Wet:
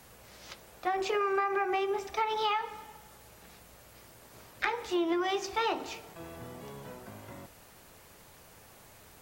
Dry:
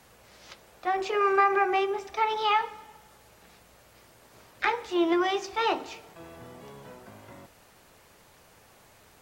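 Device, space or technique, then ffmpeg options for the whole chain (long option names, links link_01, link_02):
ASMR close-microphone chain: -af "lowshelf=frequency=230:gain=3.5,acompressor=threshold=-26dB:ratio=10,highshelf=frequency=9500:gain=7.5"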